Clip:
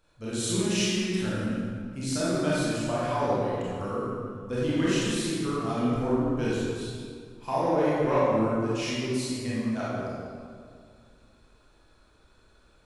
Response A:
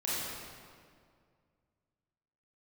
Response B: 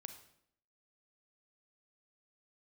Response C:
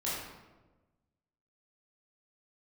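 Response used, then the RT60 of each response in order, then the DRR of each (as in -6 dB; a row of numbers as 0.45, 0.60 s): A; 2.1, 0.70, 1.2 s; -9.0, 7.5, -9.0 dB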